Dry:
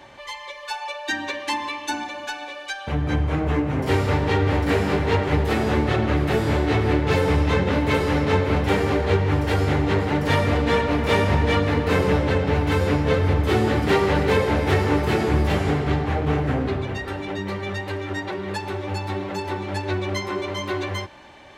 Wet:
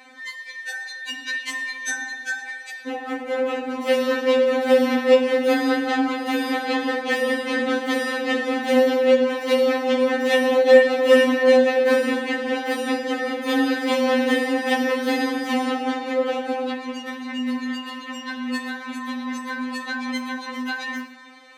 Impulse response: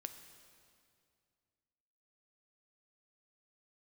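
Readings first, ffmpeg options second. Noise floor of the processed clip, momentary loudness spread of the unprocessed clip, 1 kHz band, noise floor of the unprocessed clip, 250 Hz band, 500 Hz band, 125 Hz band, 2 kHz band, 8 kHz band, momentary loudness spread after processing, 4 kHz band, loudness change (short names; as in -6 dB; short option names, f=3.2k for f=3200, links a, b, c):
-38 dBFS, 9 LU, -1.5 dB, -38 dBFS, +0.5 dB, +4.0 dB, under -35 dB, +2.5 dB, +2.5 dB, 14 LU, +2.0 dB, +0.5 dB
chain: -filter_complex "[0:a]afreqshift=53[a];[1:a]atrim=start_sample=2205,atrim=end_sample=6174[b];[a][b]afir=irnorm=-1:irlink=0,afftfilt=real='re*3.46*eq(mod(b,12),0)':imag='im*3.46*eq(mod(b,12),0)':win_size=2048:overlap=0.75,volume=8dB"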